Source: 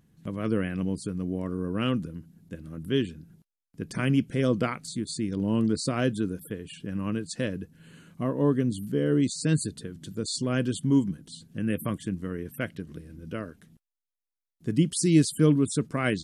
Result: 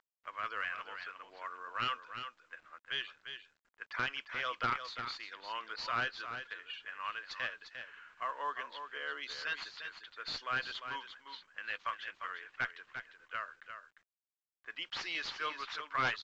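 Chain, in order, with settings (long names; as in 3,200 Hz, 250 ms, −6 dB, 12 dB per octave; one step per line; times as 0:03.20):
running median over 5 samples
high-pass filter 1,100 Hz 24 dB per octave
low-pass that shuts in the quiet parts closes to 1,600 Hz, open at −37.5 dBFS
dynamic equaliser 2,100 Hz, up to −4 dB, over −49 dBFS, Q 1.1
harmonic generator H 3 −6 dB, 4 −27 dB, 7 −22 dB, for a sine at −16.5 dBFS
bit reduction 12 bits
high-frequency loss of the air 280 metres
on a send: single-tap delay 350 ms −8.5 dB
on the sum: level +8.5 dB
mu-law 128 kbit/s 16,000 Hz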